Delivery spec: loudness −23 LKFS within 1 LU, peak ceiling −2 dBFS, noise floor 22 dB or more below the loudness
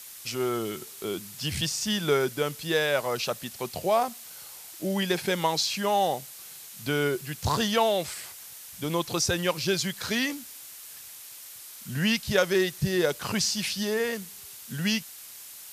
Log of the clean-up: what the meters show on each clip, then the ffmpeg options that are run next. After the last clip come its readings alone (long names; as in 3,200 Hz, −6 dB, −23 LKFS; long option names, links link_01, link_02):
background noise floor −45 dBFS; target noise floor −50 dBFS; integrated loudness −27.5 LKFS; sample peak −8.0 dBFS; target loudness −23.0 LKFS
→ -af "afftdn=noise_reduction=6:noise_floor=-45"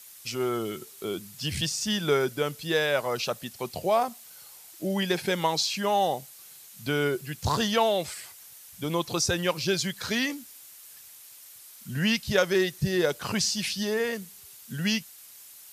background noise floor −49 dBFS; target noise floor −50 dBFS
→ -af "afftdn=noise_reduction=6:noise_floor=-49"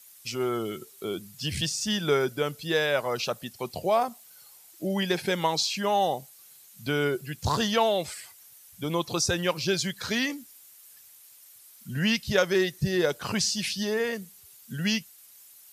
background noise floor −53 dBFS; integrated loudness −27.5 LKFS; sample peak −8.0 dBFS; target loudness −23.0 LKFS
→ -af "volume=4.5dB"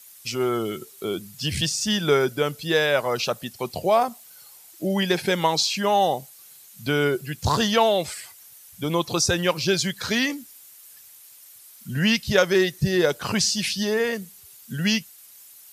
integrated loudness −23.0 LKFS; sample peak −3.5 dBFS; background noise floor −49 dBFS